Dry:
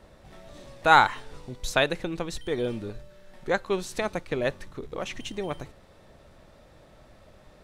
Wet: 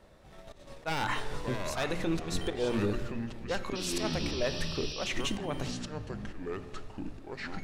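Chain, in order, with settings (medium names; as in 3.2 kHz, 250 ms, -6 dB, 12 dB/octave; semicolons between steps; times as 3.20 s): one-sided wavefolder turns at -18 dBFS; gate -44 dBFS, range -11 dB; hum notches 60/120/180/240/300/360 Hz; slow attack 276 ms; peak limiter -28.5 dBFS, peak gain reduction 15.5 dB; ever faster or slower copies 225 ms, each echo -6 st, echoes 2, each echo -6 dB; painted sound noise, 3.75–5.08 s, 2.4–5.9 kHz -48 dBFS; on a send: reverberation RT60 2.4 s, pre-delay 5 ms, DRR 13 dB; on the sum: trim +6.5 dB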